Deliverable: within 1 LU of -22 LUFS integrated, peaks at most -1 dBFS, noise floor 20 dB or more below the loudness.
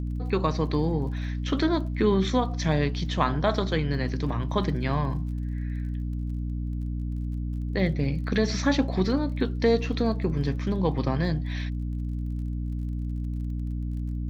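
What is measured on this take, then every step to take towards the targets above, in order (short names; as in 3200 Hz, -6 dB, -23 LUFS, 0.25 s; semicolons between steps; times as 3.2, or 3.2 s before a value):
ticks 30/s; hum 60 Hz; harmonics up to 300 Hz; hum level -27 dBFS; loudness -27.5 LUFS; peak -7.5 dBFS; loudness target -22.0 LUFS
-> de-click; notches 60/120/180/240/300 Hz; gain +5.5 dB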